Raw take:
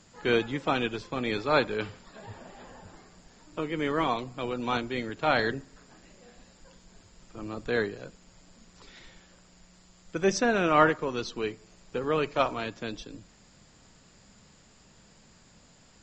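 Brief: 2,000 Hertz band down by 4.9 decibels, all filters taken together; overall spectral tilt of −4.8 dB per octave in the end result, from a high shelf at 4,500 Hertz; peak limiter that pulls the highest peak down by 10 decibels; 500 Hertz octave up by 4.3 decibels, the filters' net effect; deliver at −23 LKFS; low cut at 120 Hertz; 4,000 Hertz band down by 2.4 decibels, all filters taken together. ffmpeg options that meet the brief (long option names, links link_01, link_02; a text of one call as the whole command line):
ffmpeg -i in.wav -af "highpass=120,equalizer=frequency=500:width_type=o:gain=5.5,equalizer=frequency=2000:width_type=o:gain=-7.5,equalizer=frequency=4000:width_type=o:gain=-3,highshelf=frequency=4500:gain=5,volume=7.5dB,alimiter=limit=-11.5dB:level=0:latency=1" out.wav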